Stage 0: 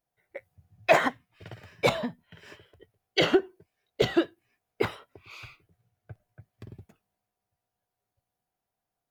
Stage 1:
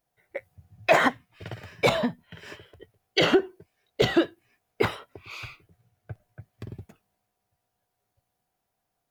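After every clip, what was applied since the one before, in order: peak limiter -16 dBFS, peak gain reduction 6.5 dB; trim +6 dB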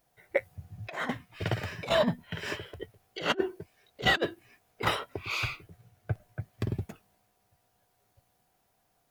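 compressor with a negative ratio -28 dBFS, ratio -0.5; trim +1.5 dB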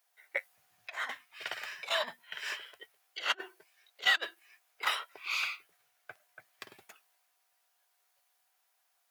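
high-pass 1.2 kHz 12 dB/octave

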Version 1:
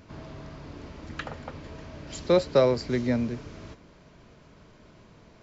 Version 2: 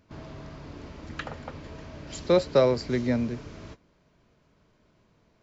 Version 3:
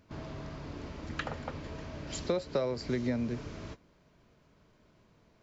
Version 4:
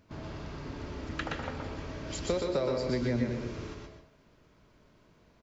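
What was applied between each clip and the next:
gate -44 dBFS, range -11 dB
compression 6:1, threshold -28 dBFS, peak gain reduction 12.5 dB
delay 122 ms -4 dB; reverberation RT60 0.50 s, pre-delay 117 ms, DRR 5.5 dB

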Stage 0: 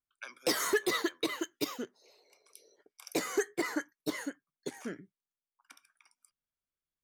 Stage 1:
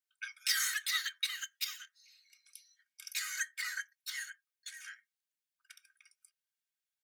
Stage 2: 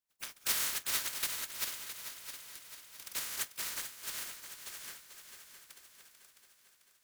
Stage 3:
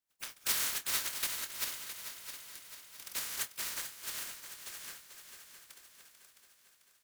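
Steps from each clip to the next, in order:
elliptic high-pass 1.5 kHz, stop band 50 dB; comb 3.2 ms; trim +1 dB
spectral contrast reduction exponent 0.14; multi-head delay 221 ms, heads second and third, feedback 55%, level -10.5 dB
doubling 26 ms -12 dB

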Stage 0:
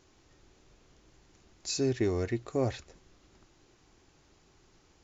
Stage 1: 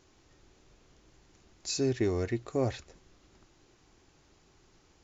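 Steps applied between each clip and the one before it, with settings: no audible change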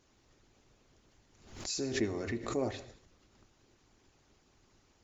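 gated-style reverb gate 260 ms falling, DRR 6.5 dB; harmonic-percussive split harmonic -10 dB; swell ahead of each attack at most 87 dB/s; trim -1.5 dB

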